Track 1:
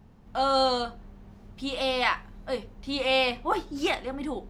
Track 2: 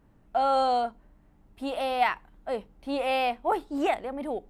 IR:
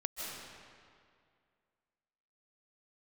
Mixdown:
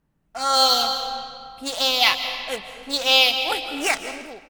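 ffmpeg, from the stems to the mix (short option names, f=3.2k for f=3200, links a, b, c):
-filter_complex "[0:a]highpass=f=1.5k:p=1,aeval=exprs='sgn(val(0))*max(abs(val(0))-0.0133,0)':c=same,asplit=2[a][b];[b]afreqshift=-0.84[c];[a][c]amix=inputs=2:normalize=1,volume=-2.5dB,asplit=2[d][e];[e]volume=-4.5dB[f];[1:a]equalizer=f=160:t=o:w=0.21:g=12,adelay=0.3,volume=-14.5dB,asplit=2[g][h];[h]volume=-8dB[i];[2:a]atrim=start_sample=2205[j];[f][i]amix=inputs=2:normalize=0[k];[k][j]afir=irnorm=-1:irlink=0[l];[d][g][l]amix=inputs=3:normalize=0,highshelf=f=2k:g=9,dynaudnorm=f=120:g=9:m=12.5dB"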